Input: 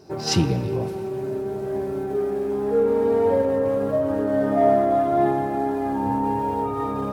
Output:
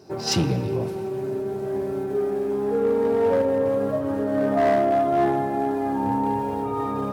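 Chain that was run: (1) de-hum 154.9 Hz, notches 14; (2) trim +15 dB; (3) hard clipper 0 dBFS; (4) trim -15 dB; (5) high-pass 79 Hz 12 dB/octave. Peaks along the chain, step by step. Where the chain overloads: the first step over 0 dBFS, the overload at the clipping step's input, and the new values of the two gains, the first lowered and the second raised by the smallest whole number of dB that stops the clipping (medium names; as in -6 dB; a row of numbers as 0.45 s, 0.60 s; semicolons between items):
-7.5 dBFS, +7.5 dBFS, 0.0 dBFS, -15.0 dBFS, -11.0 dBFS; step 2, 7.5 dB; step 2 +7 dB, step 4 -7 dB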